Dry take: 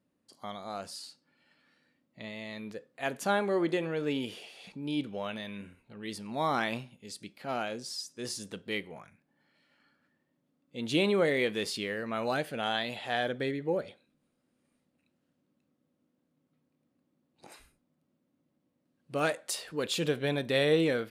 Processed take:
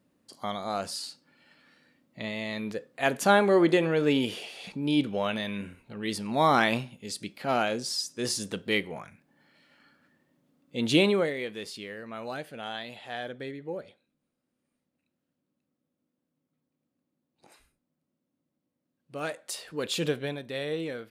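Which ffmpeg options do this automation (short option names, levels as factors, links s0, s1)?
-af "volume=5.62,afade=t=out:st=10.86:d=0.48:silence=0.223872,afade=t=in:st=19.18:d=0.88:silence=0.421697,afade=t=out:st=20.06:d=0.33:silence=0.354813"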